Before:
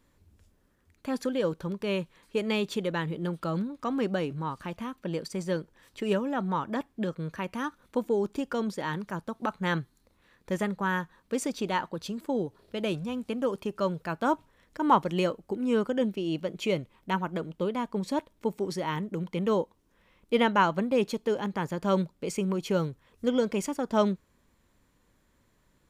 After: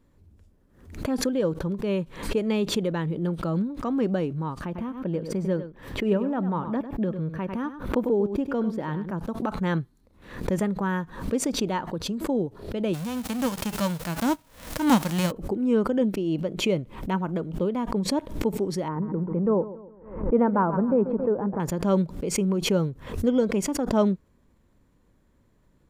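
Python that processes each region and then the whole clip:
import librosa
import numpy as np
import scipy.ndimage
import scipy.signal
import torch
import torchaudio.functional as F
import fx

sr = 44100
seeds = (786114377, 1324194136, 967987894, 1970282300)

y = fx.chain(x, sr, fx.peak_eq(hz=7700.0, db=-10.5, octaves=1.9),
    fx.echo_single(ms=99, db=-11.5), at=(4.65, 9.18))
y = fx.envelope_flatten(y, sr, power=0.3, at=(12.93, 15.3), fade=0.02)
y = fx.peak_eq(y, sr, hz=400.0, db=-12.5, octaves=0.21, at=(12.93, 15.3), fade=0.02)
y = fx.chain(y, sr, fx.lowpass(hz=1400.0, slope=24),
    fx.hum_notches(base_hz=50, count=3),
    fx.echo_warbled(ms=137, feedback_pct=43, rate_hz=2.8, cents=53, wet_db=-15.5), at=(18.88, 21.6))
y = fx.tilt_shelf(y, sr, db=5.5, hz=870.0)
y = fx.pre_swell(y, sr, db_per_s=97.0)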